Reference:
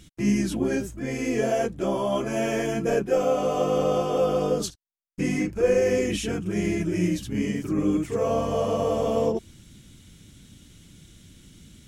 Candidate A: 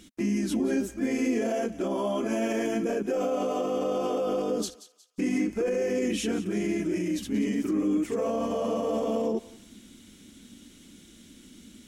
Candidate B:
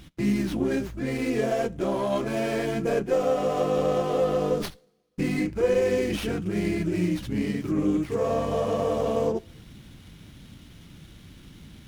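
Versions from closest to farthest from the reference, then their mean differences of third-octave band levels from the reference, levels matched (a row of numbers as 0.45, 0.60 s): B, A; 2.5, 4.0 dB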